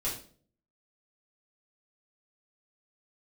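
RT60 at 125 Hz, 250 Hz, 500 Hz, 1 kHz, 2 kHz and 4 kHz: 0.70 s, 0.65 s, 0.55 s, 0.40 s, 0.35 s, 0.40 s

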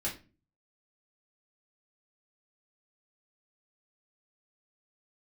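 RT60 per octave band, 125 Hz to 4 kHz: 0.60 s, 0.55 s, 0.40 s, 0.30 s, 0.30 s, 0.25 s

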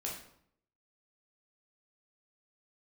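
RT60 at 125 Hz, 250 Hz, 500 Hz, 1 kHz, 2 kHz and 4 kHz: 0.80 s, 0.80 s, 0.65 s, 0.65 s, 0.55 s, 0.50 s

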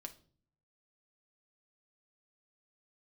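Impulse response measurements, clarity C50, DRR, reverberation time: 15.0 dB, 4.5 dB, 0.45 s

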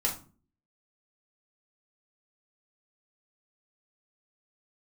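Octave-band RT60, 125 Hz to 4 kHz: 0.60 s, 0.60 s, 0.40 s, 0.35 s, 0.30 s, 0.25 s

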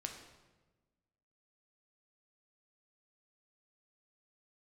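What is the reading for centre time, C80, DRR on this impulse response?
29 ms, 8.5 dB, 2.5 dB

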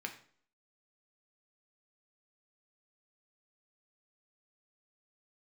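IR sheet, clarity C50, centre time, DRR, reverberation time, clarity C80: 11.0 dB, 12 ms, 3.0 dB, 0.50 s, 14.5 dB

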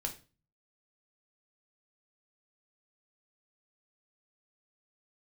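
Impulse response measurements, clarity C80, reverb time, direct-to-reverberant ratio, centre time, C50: 17.5 dB, 0.35 s, 3.0 dB, 12 ms, 12.0 dB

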